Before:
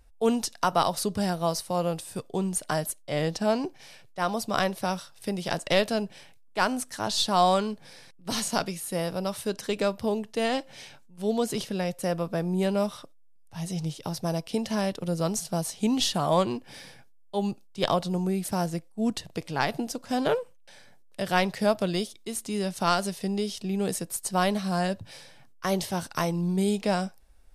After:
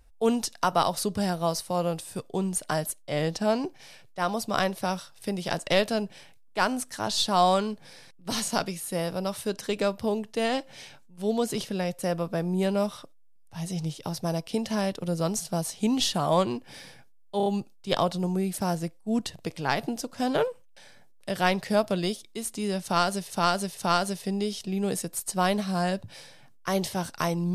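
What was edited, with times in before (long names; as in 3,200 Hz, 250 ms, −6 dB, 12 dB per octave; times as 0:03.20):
0:17.37: stutter 0.03 s, 4 plays
0:22.74–0:23.21: repeat, 3 plays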